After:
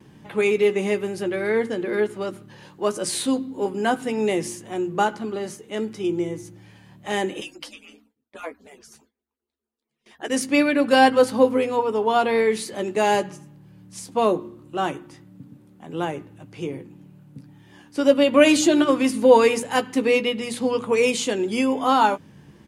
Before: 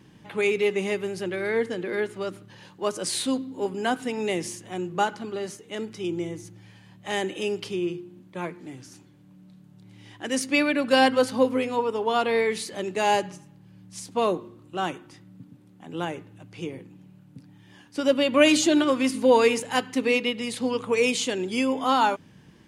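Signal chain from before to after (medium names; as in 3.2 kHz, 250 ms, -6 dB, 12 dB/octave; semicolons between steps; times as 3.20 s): 7.40–10.30 s: harmonic-percussive separation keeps percussive; treble shelf 2.3 kHz -10 dB; hum notches 60/120/180/240/300 Hz; gate with hold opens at -52 dBFS; treble shelf 6.5 kHz +10.5 dB; doubling 14 ms -10 dB; trim +4.5 dB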